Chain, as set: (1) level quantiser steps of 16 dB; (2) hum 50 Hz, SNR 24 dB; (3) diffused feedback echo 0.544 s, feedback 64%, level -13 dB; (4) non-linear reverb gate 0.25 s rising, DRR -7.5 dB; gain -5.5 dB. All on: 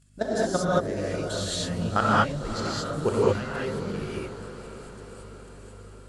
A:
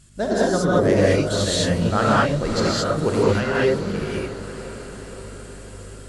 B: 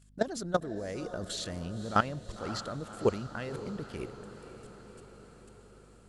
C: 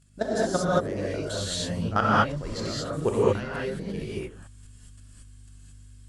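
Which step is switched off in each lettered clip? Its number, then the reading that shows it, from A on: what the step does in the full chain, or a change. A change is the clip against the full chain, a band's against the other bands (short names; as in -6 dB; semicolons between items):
1, crest factor change -3.5 dB; 4, crest factor change +4.5 dB; 3, momentary loudness spread change -10 LU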